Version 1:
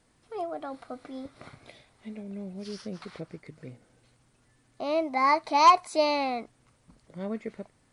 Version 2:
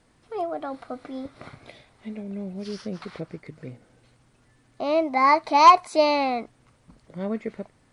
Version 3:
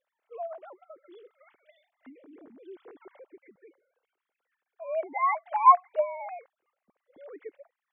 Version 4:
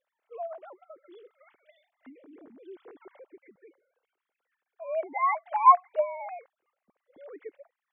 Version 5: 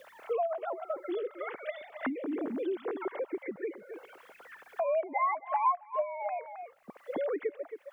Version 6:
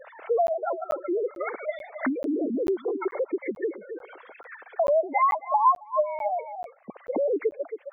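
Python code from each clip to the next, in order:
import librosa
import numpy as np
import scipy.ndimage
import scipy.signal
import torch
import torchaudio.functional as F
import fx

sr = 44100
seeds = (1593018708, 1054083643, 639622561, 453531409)

y1 = fx.high_shelf(x, sr, hz=6000.0, db=-7.0)
y1 = y1 * librosa.db_to_amplitude(5.0)
y2 = fx.sine_speech(y1, sr)
y2 = y2 * librosa.db_to_amplitude(-6.5)
y3 = y2
y4 = y3 + 10.0 ** (-16.5 / 20.0) * np.pad(y3, (int(268 * sr / 1000.0), 0))[:len(y3)]
y4 = fx.band_squash(y4, sr, depth_pct=100)
y4 = y4 * librosa.db_to_amplitude(2.5)
y5 = fx.spec_gate(y4, sr, threshold_db=-15, keep='strong')
y5 = fx.buffer_crackle(y5, sr, first_s=0.47, period_s=0.44, block=512, kind='zero')
y5 = y5 * librosa.db_to_amplitude(7.5)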